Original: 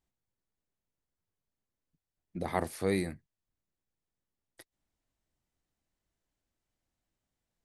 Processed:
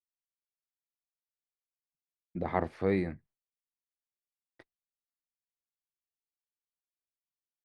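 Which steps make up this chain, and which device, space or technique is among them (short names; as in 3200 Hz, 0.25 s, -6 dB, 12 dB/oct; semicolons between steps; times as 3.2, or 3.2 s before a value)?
hearing-loss simulation (LPF 2200 Hz 12 dB/oct; expander -58 dBFS); gain +1.5 dB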